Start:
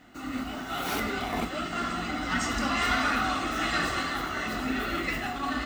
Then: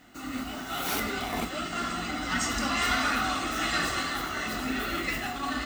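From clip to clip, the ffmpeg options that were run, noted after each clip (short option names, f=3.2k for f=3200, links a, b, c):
-af "highshelf=f=4.4k:g=8,volume=-1.5dB"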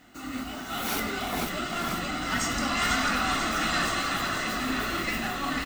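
-filter_complex "[0:a]asplit=8[a][b][c][d][e][f][g][h];[b]adelay=493,afreqshift=-34,volume=-5.5dB[i];[c]adelay=986,afreqshift=-68,volume=-10.5dB[j];[d]adelay=1479,afreqshift=-102,volume=-15.6dB[k];[e]adelay=1972,afreqshift=-136,volume=-20.6dB[l];[f]adelay=2465,afreqshift=-170,volume=-25.6dB[m];[g]adelay=2958,afreqshift=-204,volume=-30.7dB[n];[h]adelay=3451,afreqshift=-238,volume=-35.7dB[o];[a][i][j][k][l][m][n][o]amix=inputs=8:normalize=0"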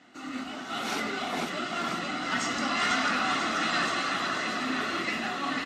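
-af "highpass=190,lowpass=5.9k" -ar 32000 -c:a libmp3lame -b:a 56k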